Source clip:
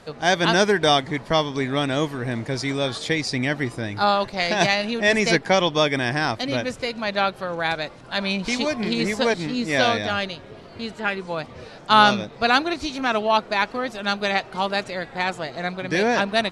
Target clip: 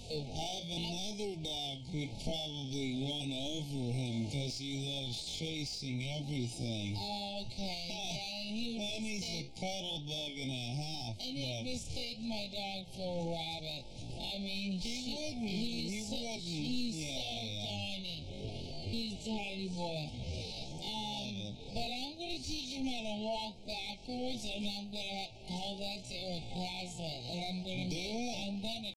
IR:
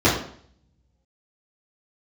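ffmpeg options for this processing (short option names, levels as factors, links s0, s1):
-filter_complex "[0:a]aexciter=amount=4.9:drive=7:freq=2900,acompressor=threshold=0.0562:ratio=6,flanger=delay=7.3:depth=6.3:regen=-57:speed=1.4:shape=triangular,acrossover=split=180|3000[s0][s1][s2];[s0]acompressor=threshold=0.00398:ratio=10[s3];[s3][s1][s2]amix=inputs=3:normalize=0,adynamicequalizer=threshold=0.00282:dfrequency=430:dqfactor=1.3:tfrequency=430:tqfactor=1.3:attack=5:release=100:ratio=0.375:range=3.5:mode=cutabove:tftype=bell,asoftclip=type=tanh:threshold=0.0251,afftfilt=real='re*(1-between(b*sr/4096,910,2100))':imag='im*(1-between(b*sr/4096,910,2100))':win_size=4096:overlap=0.75,aemphasis=mode=reproduction:type=bsi,atempo=0.57"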